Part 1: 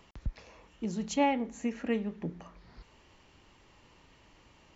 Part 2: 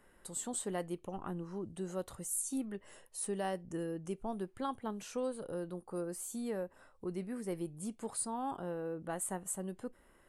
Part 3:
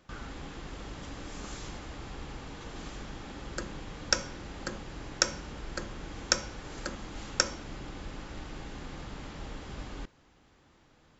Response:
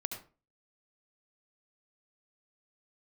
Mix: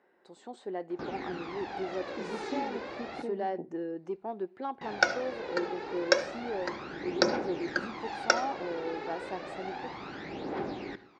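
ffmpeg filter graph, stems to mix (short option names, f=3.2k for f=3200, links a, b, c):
-filter_complex "[0:a]afwtdn=0.0141,acompressor=threshold=-31dB:ratio=6,adelay=1350,volume=-2dB[a];[1:a]dynaudnorm=f=150:g=11:m=4.5dB,asoftclip=type=tanh:threshold=-26dB,volume=-2.5dB,asplit=2[b][c];[c]volume=-23dB[d];[2:a]aphaser=in_gain=1:out_gain=1:delay=2.4:decay=0.65:speed=0.31:type=triangular,adelay=900,volume=1.5dB,asplit=3[e][f][g];[e]atrim=end=3.22,asetpts=PTS-STARTPTS,afade=t=out:st=3.216:d=0.004:c=hsin[h];[f]atrim=start=3.22:end=4.81,asetpts=PTS-STARTPTS,volume=0[i];[g]atrim=start=4.81,asetpts=PTS-STARTPTS,afade=t=in:d=0.004:c=hsin[j];[h][i][j]concat=n=3:v=0:a=1,asplit=2[k][l];[l]volume=-8.5dB[m];[3:a]atrim=start_sample=2205[n];[d][m]amix=inputs=2:normalize=0[o];[o][n]afir=irnorm=-1:irlink=0[p];[a][b][k][p]amix=inputs=4:normalize=0,highpass=290,equalizer=f=370:t=q:w=4:g=7,equalizer=f=770:t=q:w=4:g=6,equalizer=f=1.2k:t=q:w=4:g=-4,equalizer=f=3.1k:t=q:w=4:g=-9,lowpass=f=4.2k:w=0.5412,lowpass=f=4.2k:w=1.3066"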